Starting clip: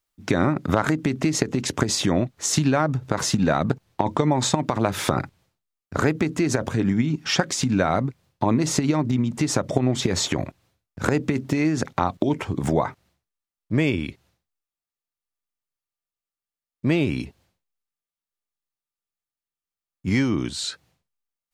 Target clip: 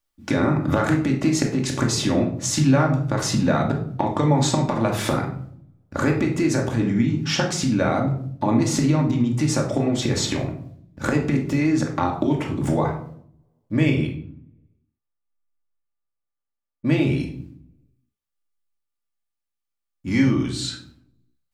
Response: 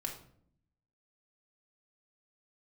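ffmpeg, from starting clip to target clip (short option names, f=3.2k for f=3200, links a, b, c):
-filter_complex "[0:a]asettb=1/sr,asplit=3[a][b][c];[a]atrim=end=14.074[d];[b]atrim=start=14.07:end=16.85,asetpts=PTS-STARTPTS,afade=t=in:d=0.004:c=qsin,afade=t=out:st=2.776:d=0.004:c=qsin,lowpass=1.7k[e];[c]atrim=start=16.846[f];[d][e]acrossfade=d=0.004:c1=hsin:c2=qsin[g];[g][f]acrossfade=d=0.004:c1=qsin:c2=hsin[h];[1:a]atrim=start_sample=2205[i];[h][i]afir=irnorm=-1:irlink=0"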